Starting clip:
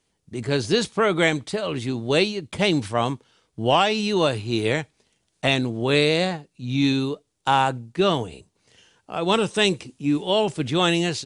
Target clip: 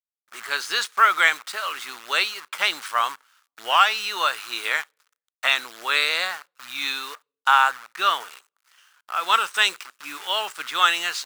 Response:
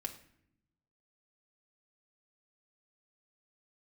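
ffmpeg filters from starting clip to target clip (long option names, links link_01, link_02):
-filter_complex "[0:a]acrusher=bits=7:dc=4:mix=0:aa=0.000001,highpass=frequency=1300:width_type=q:width=3.2,asplit=2[link_01][link_02];[1:a]atrim=start_sample=2205,asetrate=74970,aresample=44100[link_03];[link_02][link_03]afir=irnorm=-1:irlink=0,volume=-18dB[link_04];[link_01][link_04]amix=inputs=2:normalize=0"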